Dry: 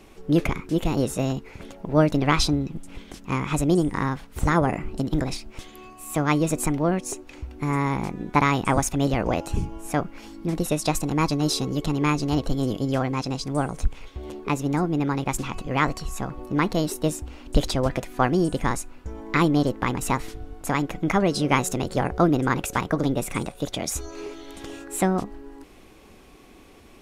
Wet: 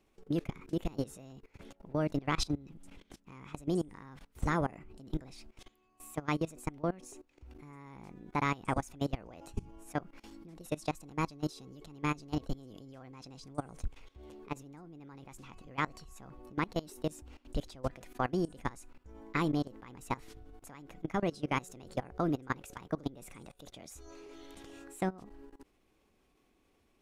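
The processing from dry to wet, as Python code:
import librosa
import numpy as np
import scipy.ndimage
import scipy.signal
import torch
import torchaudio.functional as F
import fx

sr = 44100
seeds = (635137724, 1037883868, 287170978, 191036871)

y = fx.level_steps(x, sr, step_db=21)
y = y * 10.0 ** (-8.5 / 20.0)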